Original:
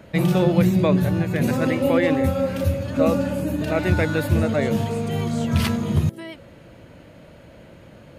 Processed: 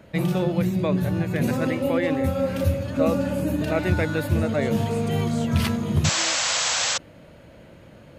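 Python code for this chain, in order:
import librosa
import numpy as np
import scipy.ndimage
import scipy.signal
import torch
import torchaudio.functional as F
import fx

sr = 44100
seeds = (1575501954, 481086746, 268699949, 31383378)

y = fx.rider(x, sr, range_db=10, speed_s=0.5)
y = fx.spec_paint(y, sr, seeds[0], shape='noise', start_s=6.04, length_s=0.94, low_hz=470.0, high_hz=8000.0, level_db=-21.0)
y = F.gain(torch.from_numpy(y), -2.5).numpy()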